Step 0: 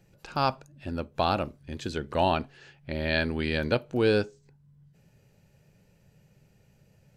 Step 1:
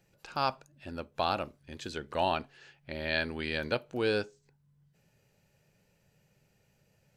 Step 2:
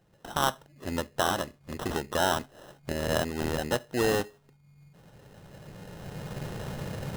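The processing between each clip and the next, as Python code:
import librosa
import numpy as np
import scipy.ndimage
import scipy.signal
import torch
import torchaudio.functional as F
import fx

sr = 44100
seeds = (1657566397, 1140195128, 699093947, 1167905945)

y1 = fx.low_shelf(x, sr, hz=390.0, db=-8.0)
y1 = F.gain(torch.from_numpy(y1), -2.5).numpy()
y2 = fx.recorder_agc(y1, sr, target_db=-20.5, rise_db_per_s=13.0, max_gain_db=30)
y2 = fx.sample_hold(y2, sr, seeds[0], rate_hz=2300.0, jitter_pct=0)
y2 = F.gain(torch.from_numpy(y2), 3.0).numpy()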